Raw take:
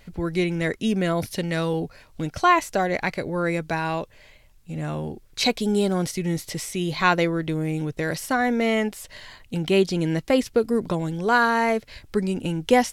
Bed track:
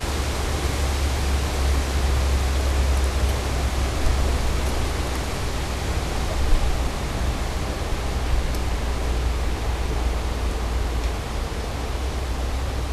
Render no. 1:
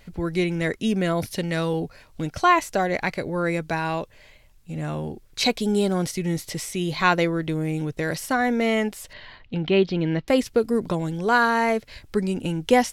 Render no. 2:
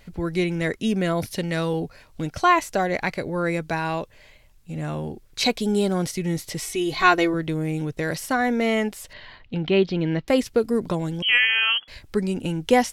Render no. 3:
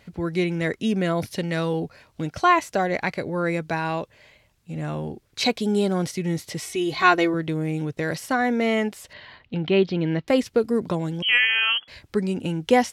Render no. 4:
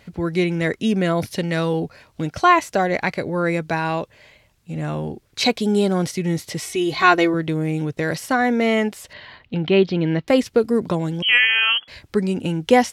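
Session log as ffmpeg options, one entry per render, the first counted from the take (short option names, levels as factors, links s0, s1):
-filter_complex "[0:a]asettb=1/sr,asplit=3[s0][s1][s2];[s0]atrim=end=9.134[s3];[s1]atrim=start=9.13:end=10.28,asetpts=PTS-STARTPTS,afade=t=in:d=0.004:c=qsin,afade=t=out:st=1.146:d=0.004:c=qsin,lowpass=f=4000:w=0.5412,lowpass=f=4000:w=1.3066[s4];[s2]atrim=start=10.276[s5];[s3][s4]acrossfade=d=0.004:c1=hsin:c2=qsin[s6];[s6][s5]acrossfade=d=0.004:c1=qsin:c2=hsin"
-filter_complex "[0:a]asettb=1/sr,asplit=3[s0][s1][s2];[s0]atrim=end=6.624[s3];[s1]atrim=start=6.62:end=7.34,asetpts=PTS-STARTPTS,afade=t=in:d=0.004:c=qsin,afade=t=out:st=0.716:d=0.004:c=qsin,aecho=1:1:2.7:0.73,atrim=end_sample=31752[s4];[s2]atrim=start=7.336[s5];[s3][s4]acrossfade=d=0.004:c1=hsin:c2=qsin[s6];[s6][s5]acrossfade=d=0.004:c1=qsin:c2=hsin,asettb=1/sr,asplit=3[s7][s8][s9];[s7]atrim=end=11.224[s10];[s8]atrim=start=11.22:end=11.88,asetpts=PTS-STARTPTS,afade=t=in:d=0.004:c=qsin,afade=t=out:st=0.656:d=0.004:c=qsin,lowpass=f=2900:t=q:w=0.5098,lowpass=f=2900:t=q:w=0.6013,lowpass=f=2900:t=q:w=0.9,lowpass=f=2900:t=q:w=2.563,afreqshift=-3400[s11];[s9]atrim=start=11.876[s12];[s10][s11]acrossfade=d=0.004:c1=hsin:c2=qsin[s13];[s13][s12]acrossfade=d=0.004:c1=qsin:c2=hsin"
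-af "highpass=76,highshelf=f=8000:g=-7"
-af "volume=1.5,alimiter=limit=0.891:level=0:latency=1"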